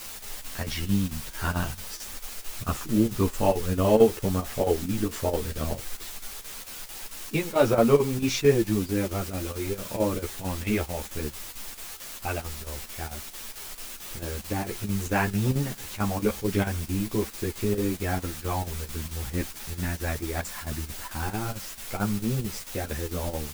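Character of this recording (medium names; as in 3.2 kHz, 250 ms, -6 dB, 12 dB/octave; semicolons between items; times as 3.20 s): a quantiser's noise floor 6-bit, dither triangular; chopped level 4.5 Hz, depth 65%, duty 80%; a shimmering, thickened sound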